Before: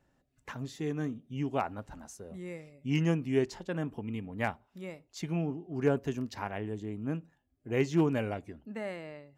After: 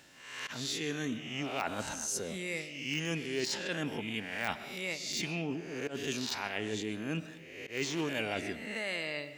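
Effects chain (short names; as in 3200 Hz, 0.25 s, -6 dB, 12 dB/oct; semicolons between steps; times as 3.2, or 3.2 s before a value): spectral swells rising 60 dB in 0.55 s; weighting filter D; de-esser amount 80%; high shelf 4400 Hz +9 dB; reverse; compressor 5:1, threshold -42 dBFS, peak gain reduction 19 dB; reverse; auto swell 0.114 s; reverb RT60 0.70 s, pre-delay 85 ms, DRR 13 dB; gain +8.5 dB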